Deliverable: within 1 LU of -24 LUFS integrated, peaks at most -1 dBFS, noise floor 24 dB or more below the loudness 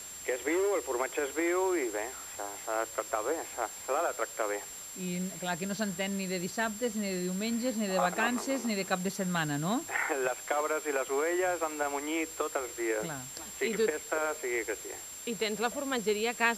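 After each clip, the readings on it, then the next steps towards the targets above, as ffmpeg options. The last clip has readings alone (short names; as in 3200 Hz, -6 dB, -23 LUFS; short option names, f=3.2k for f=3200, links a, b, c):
steady tone 7400 Hz; tone level -43 dBFS; noise floor -44 dBFS; noise floor target -57 dBFS; loudness -32.5 LUFS; peak -11.0 dBFS; loudness target -24.0 LUFS
-> -af "bandreject=f=7.4k:w=30"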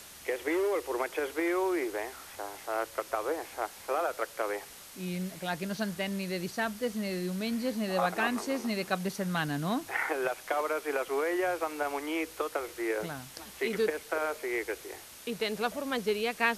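steady tone none; noise floor -49 dBFS; noise floor target -57 dBFS
-> -af "afftdn=nr=8:nf=-49"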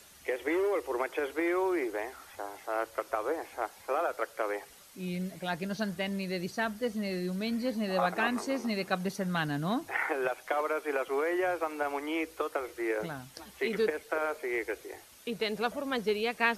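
noise floor -55 dBFS; noise floor target -57 dBFS
-> -af "afftdn=nr=6:nf=-55"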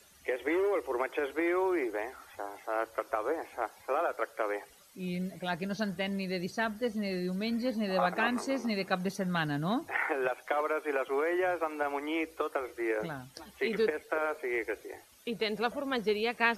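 noise floor -58 dBFS; loudness -33.0 LUFS; peak -11.5 dBFS; loudness target -24.0 LUFS
-> -af "volume=9dB"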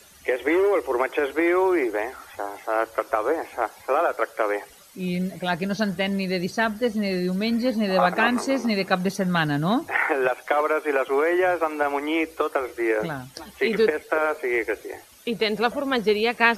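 loudness -24.0 LUFS; peak -2.5 dBFS; noise floor -49 dBFS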